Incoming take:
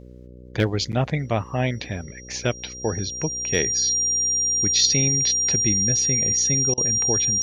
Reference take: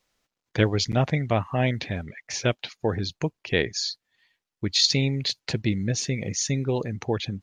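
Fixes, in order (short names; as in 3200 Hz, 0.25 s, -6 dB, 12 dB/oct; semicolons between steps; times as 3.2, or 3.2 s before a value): clip repair -7.5 dBFS; de-hum 61.8 Hz, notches 9; notch 5700 Hz, Q 30; interpolate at 6.74, 35 ms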